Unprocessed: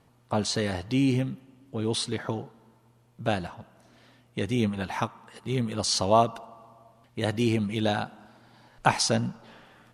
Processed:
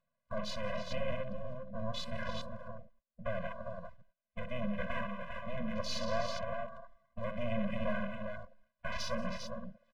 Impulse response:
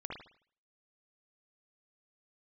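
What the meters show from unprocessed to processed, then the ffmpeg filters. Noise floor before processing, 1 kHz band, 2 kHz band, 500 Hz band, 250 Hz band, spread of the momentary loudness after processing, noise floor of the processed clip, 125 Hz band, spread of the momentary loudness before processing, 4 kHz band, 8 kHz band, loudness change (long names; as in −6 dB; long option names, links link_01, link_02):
−62 dBFS, −12.5 dB, −7.0 dB, −8.5 dB, −12.5 dB, 12 LU, below −85 dBFS, −13.0 dB, 16 LU, −12.5 dB, −18.5 dB, −12.0 dB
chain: -af "agate=range=-23dB:threshold=-51dB:ratio=16:detection=peak,asoftclip=type=tanh:threshold=-19.5dB,highpass=260,lowpass=2000,alimiter=level_in=3dB:limit=-24dB:level=0:latency=1:release=93,volume=-3dB,aemphasis=mode=production:type=riaa,aecho=1:1:63|179|181|321|402:0.376|0.178|0.178|0.251|0.501,acompressor=mode=upward:threshold=-54dB:ratio=2.5,lowshelf=frequency=480:gain=11.5,aeval=exprs='max(val(0),0)':channel_layout=same,afwtdn=0.00447,afftfilt=real='re*eq(mod(floor(b*sr/1024/240),2),0)':imag='im*eq(mod(floor(b*sr/1024/240),2),0)':win_size=1024:overlap=0.75,volume=4.5dB"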